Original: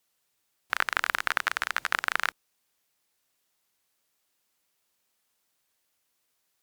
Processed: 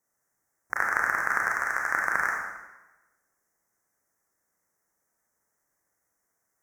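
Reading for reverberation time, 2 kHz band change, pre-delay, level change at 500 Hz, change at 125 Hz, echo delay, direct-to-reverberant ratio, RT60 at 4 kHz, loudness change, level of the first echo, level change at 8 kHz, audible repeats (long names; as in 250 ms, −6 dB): 1.1 s, +3.0 dB, 26 ms, +3.0 dB, can't be measured, no echo audible, −1.5 dB, 0.95 s, +2.0 dB, no echo audible, −1.0 dB, no echo audible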